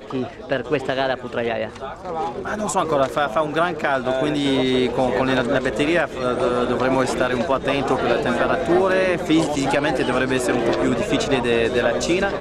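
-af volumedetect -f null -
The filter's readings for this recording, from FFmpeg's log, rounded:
mean_volume: -20.3 dB
max_volume: -5.0 dB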